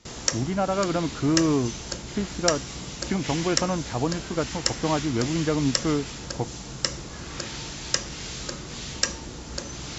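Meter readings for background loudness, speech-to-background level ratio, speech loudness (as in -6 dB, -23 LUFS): -31.0 LUFS, 4.0 dB, -27.0 LUFS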